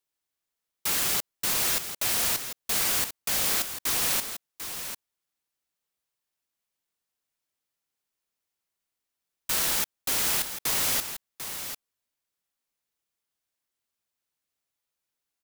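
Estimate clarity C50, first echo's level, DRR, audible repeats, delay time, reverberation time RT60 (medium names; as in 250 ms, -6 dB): no reverb, -9.5 dB, no reverb, 1, 745 ms, no reverb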